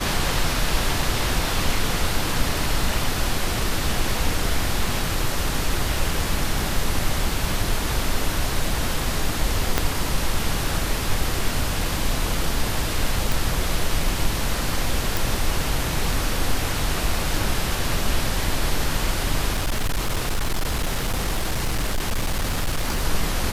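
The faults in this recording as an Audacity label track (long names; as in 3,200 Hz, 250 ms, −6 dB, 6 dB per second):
9.780000	9.780000	click −3 dBFS
13.320000	13.320000	click
15.170000	15.170000	click
19.520000	23.050000	clipping −18.5 dBFS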